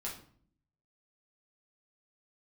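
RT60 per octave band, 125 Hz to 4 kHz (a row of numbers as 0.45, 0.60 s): 1.0, 0.85, 0.55, 0.50, 0.45, 0.40 s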